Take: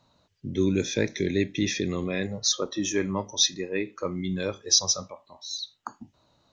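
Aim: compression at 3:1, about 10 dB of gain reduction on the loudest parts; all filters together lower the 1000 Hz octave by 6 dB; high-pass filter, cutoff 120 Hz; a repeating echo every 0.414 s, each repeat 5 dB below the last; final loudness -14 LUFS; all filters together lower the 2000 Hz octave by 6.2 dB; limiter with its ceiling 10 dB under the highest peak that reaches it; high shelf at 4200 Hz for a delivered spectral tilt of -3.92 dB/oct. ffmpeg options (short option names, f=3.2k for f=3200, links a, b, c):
-af "highpass=120,equalizer=f=1k:t=o:g=-5.5,equalizer=f=2k:t=o:g=-5,highshelf=f=4.2k:g=-5.5,acompressor=threshold=-34dB:ratio=3,alimiter=level_in=6.5dB:limit=-24dB:level=0:latency=1,volume=-6.5dB,aecho=1:1:414|828|1242|1656|2070|2484|2898:0.562|0.315|0.176|0.0988|0.0553|0.031|0.0173,volume=25.5dB"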